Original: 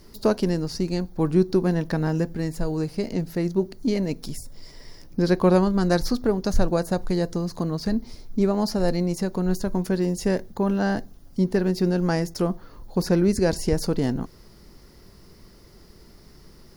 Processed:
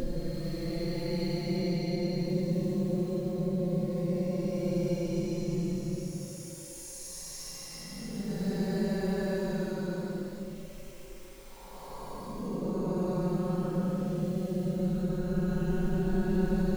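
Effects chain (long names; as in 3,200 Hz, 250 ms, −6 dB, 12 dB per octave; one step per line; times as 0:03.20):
surface crackle 480 per second −33 dBFS
tuned comb filter 540 Hz, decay 0.34 s, mix 60%
extreme stretch with random phases 28×, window 0.05 s, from 0:08.92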